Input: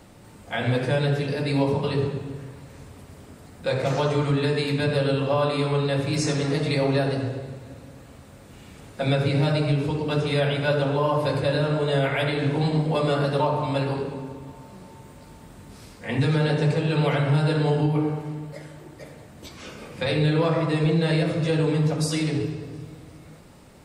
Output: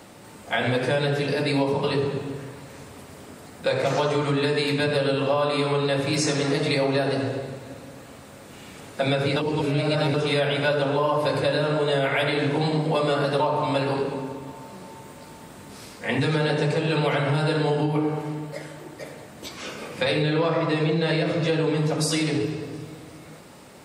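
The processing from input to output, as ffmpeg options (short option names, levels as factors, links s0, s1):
-filter_complex "[0:a]asettb=1/sr,asplit=3[s0][s1][s2];[s0]atrim=end=20.224[s3];[s1]atrim=start=20.22:end=21.77,asetpts=PTS-STARTPTS,afade=t=in:d=0.004:c=qsin,afade=t=out:st=1.546:d=0.004:c=qsin,lowpass=6700[s4];[s2]atrim=start=21.766[s5];[s3][s4]acrossfade=d=0.004:c1=hsin:c2=qsin[s6];[s6][s5]acrossfade=d=0.004:c1=qsin:c2=hsin,asplit=3[s7][s8][s9];[s7]atrim=end=9.362[s10];[s8]atrim=start=9.358:end=10.142,asetpts=PTS-STARTPTS,areverse[s11];[s9]atrim=start=10.138[s12];[s10][s11]acrossfade=d=0.004:c1=hsin:c2=hsin[s13];[s13][s12]acrossfade=d=0.004:c1=hsin:c2=hsin,highpass=f=270:p=1,acompressor=threshold=0.0501:ratio=3,volume=2"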